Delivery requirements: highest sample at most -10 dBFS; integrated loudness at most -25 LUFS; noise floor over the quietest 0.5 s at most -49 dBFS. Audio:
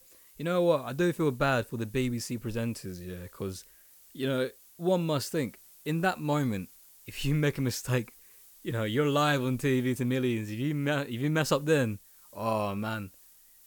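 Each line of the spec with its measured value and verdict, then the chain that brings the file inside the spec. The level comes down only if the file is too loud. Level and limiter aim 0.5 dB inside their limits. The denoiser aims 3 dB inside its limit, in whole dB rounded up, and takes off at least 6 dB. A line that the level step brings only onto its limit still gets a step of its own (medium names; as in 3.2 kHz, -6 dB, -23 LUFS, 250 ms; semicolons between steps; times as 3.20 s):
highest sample -12.0 dBFS: pass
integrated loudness -30.0 LUFS: pass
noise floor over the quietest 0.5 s -57 dBFS: pass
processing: none needed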